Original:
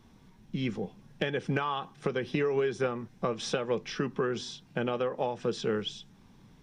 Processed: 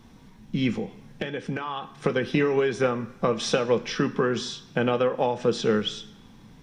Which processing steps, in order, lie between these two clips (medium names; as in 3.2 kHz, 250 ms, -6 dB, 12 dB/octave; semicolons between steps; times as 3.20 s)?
0.77–1.95 s: compression 6:1, threshold -34 dBFS, peak gain reduction 9.5 dB; on a send: reverberation RT60 1.0 s, pre-delay 3 ms, DRR 8 dB; on the sum: trim +6.5 dB